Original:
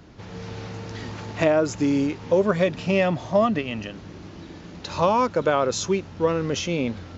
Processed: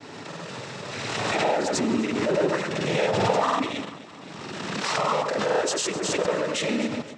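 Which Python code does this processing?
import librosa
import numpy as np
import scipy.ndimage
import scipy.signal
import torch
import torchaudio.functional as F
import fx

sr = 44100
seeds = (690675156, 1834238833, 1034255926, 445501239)

p1 = fx.highpass(x, sr, hz=520.0, slope=6)
p2 = fx.fuzz(p1, sr, gain_db=38.0, gate_db=-41.0)
p3 = p1 + (p2 * 10.0 ** (-6.5 / 20.0))
p4 = fx.noise_vocoder(p3, sr, seeds[0], bands=12)
p5 = fx.granulator(p4, sr, seeds[1], grain_ms=100.0, per_s=20.0, spray_ms=100.0, spread_st=0)
p6 = p5 + fx.echo_alternate(p5, sr, ms=130, hz=1800.0, feedback_pct=61, wet_db=-11.0, dry=0)
p7 = fx.pre_swell(p6, sr, db_per_s=23.0)
y = p7 * 10.0 ** (-6.5 / 20.0)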